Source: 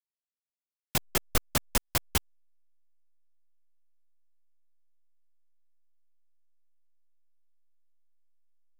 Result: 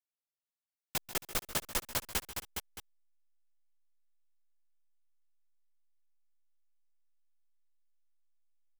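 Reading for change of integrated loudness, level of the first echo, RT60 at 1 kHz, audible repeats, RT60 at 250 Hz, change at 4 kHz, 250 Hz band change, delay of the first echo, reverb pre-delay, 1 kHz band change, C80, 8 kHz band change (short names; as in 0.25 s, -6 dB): -6.0 dB, -15.0 dB, none, 4, none, -4.5 dB, -9.5 dB, 0.138 s, none, -5.5 dB, none, -4.5 dB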